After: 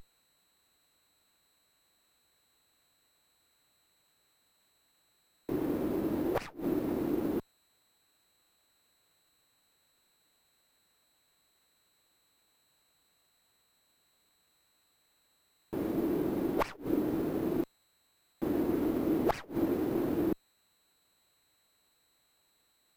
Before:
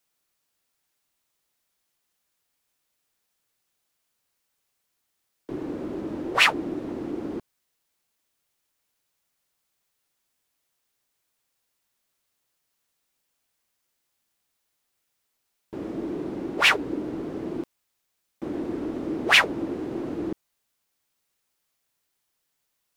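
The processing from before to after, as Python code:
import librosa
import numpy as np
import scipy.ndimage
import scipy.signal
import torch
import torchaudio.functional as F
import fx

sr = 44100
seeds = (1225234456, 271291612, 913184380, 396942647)

y = x + 10.0 ** (-45.0 / 20.0) * np.sin(2.0 * np.pi * 12000.0 * np.arange(len(x)) / sr)
y = fx.gate_flip(y, sr, shuts_db=-16.0, range_db=-25)
y = fx.running_max(y, sr, window=9)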